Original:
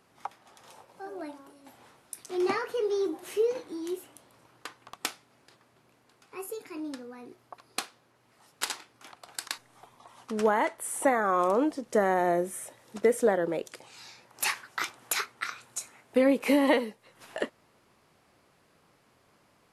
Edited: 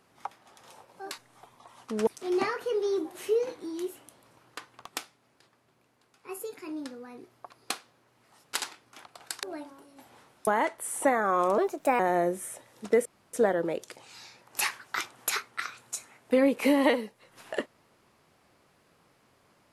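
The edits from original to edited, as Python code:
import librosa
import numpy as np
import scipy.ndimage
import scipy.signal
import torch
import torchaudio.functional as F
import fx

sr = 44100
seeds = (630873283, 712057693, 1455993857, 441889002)

y = fx.edit(x, sr, fx.swap(start_s=1.11, length_s=1.04, other_s=9.51, other_length_s=0.96),
    fx.clip_gain(start_s=5.05, length_s=1.32, db=-4.0),
    fx.speed_span(start_s=11.58, length_s=0.53, speed=1.28),
    fx.insert_room_tone(at_s=13.17, length_s=0.28), tone=tone)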